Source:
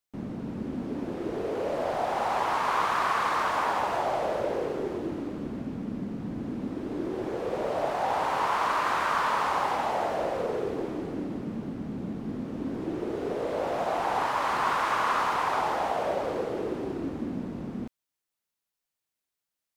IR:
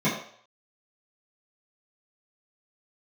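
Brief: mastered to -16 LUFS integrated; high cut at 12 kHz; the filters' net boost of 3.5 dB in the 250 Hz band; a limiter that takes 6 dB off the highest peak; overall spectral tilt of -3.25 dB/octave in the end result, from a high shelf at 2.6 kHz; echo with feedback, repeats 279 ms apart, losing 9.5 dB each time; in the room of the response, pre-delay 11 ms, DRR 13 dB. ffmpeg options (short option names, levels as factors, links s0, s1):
-filter_complex "[0:a]lowpass=12000,equalizer=f=250:t=o:g=4.5,highshelf=f=2600:g=-7,alimiter=limit=0.0944:level=0:latency=1,aecho=1:1:279|558|837|1116:0.335|0.111|0.0365|0.012,asplit=2[s0][s1];[1:a]atrim=start_sample=2205,adelay=11[s2];[s1][s2]afir=irnorm=-1:irlink=0,volume=0.0422[s3];[s0][s3]amix=inputs=2:normalize=0,volume=4.47"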